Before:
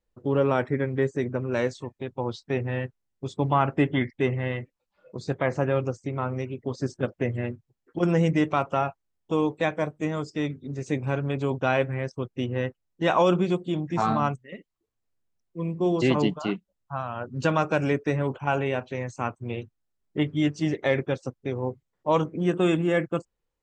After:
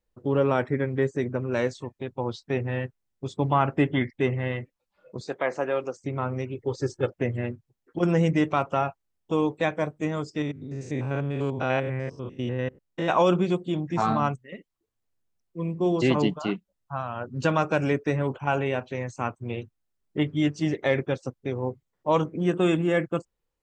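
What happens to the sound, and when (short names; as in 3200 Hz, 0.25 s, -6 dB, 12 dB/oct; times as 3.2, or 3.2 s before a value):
5.21–5.99 HPF 360 Hz
6.55–7.1 comb 2.3 ms, depth 71%
10.42–13.1 stepped spectrum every 0.1 s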